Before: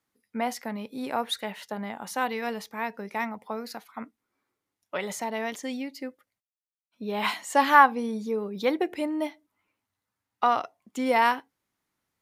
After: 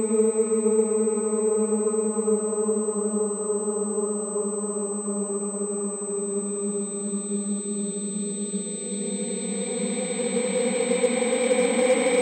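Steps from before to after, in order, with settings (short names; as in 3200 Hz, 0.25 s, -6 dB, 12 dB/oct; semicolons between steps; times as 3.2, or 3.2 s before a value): Paulstretch 42×, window 0.25 s, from 8.35; pulse-width modulation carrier 8100 Hz; gain +5 dB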